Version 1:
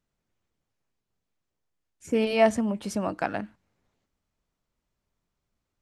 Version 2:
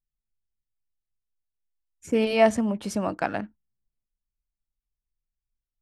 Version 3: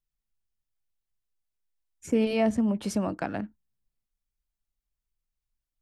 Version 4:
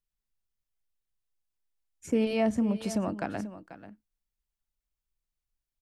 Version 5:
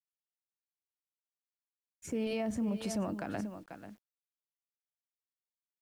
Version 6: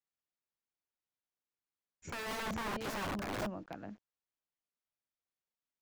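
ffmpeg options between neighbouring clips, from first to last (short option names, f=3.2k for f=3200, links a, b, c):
-af "anlmdn=0.00251,volume=1.5dB"
-filter_complex "[0:a]acrossover=split=380[a][b];[b]acompressor=threshold=-37dB:ratio=2[c];[a][c]amix=inputs=2:normalize=0,volume=1dB"
-af "aecho=1:1:488:0.2,volume=-2dB"
-af "alimiter=level_in=2dB:limit=-24dB:level=0:latency=1:release=44,volume=-2dB,acrusher=bits=10:mix=0:aa=0.000001,volume=-1dB"
-af "aresample=16000,aresample=44100,aeval=exprs='(mod(50.1*val(0)+1,2)-1)/50.1':c=same,highshelf=f=3.4k:g=-11.5,volume=3dB"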